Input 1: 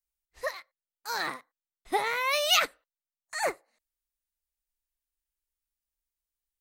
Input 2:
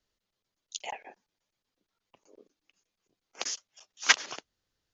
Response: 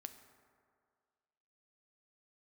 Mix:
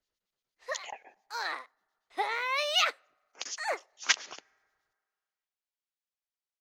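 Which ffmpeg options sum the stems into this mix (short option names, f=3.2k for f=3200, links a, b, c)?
-filter_complex "[0:a]acrossover=split=360 6200:gain=0.0891 1 0.178[a][b][c];[a][b][c]amix=inputs=3:normalize=0,adelay=250,volume=-2.5dB,asplit=2[d][e];[e]volume=-22dB[f];[1:a]acrossover=split=2100[g][h];[g]aeval=exprs='val(0)*(1-0.7/2+0.7/2*cos(2*PI*8.6*n/s))':c=same[i];[h]aeval=exprs='val(0)*(1-0.7/2-0.7/2*cos(2*PI*8.6*n/s))':c=same[j];[i][j]amix=inputs=2:normalize=0,volume=-2dB,asplit=2[k][l];[l]volume=-11.5dB[m];[2:a]atrim=start_sample=2205[n];[f][m]amix=inputs=2:normalize=0[o];[o][n]afir=irnorm=-1:irlink=0[p];[d][k][p]amix=inputs=3:normalize=0,lowshelf=f=270:g=-6"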